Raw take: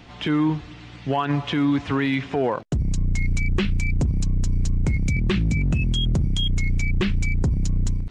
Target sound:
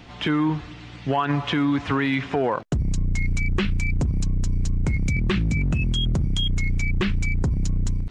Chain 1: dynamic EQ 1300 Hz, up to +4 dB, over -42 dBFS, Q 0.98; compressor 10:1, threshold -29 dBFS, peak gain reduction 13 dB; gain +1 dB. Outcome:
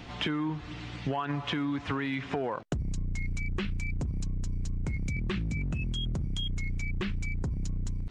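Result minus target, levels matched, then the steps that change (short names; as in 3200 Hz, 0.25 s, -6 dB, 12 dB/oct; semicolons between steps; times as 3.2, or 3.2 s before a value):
compressor: peak gain reduction +10 dB
change: compressor 10:1, threshold -18 dBFS, peak gain reduction 3 dB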